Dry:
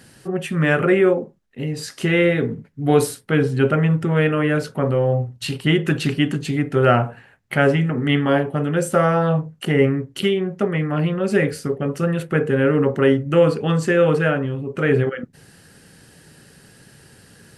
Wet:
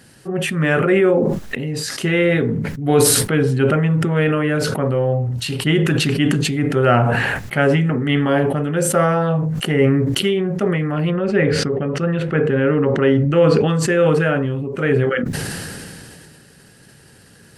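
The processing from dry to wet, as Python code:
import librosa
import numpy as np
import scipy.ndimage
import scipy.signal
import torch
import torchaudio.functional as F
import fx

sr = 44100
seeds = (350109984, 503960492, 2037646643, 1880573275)

y = fx.lowpass(x, sr, hz=fx.line((11.1, 2800.0), (13.66, 6300.0)), slope=12, at=(11.1, 13.66), fade=0.02)
y = fx.sustainer(y, sr, db_per_s=22.0)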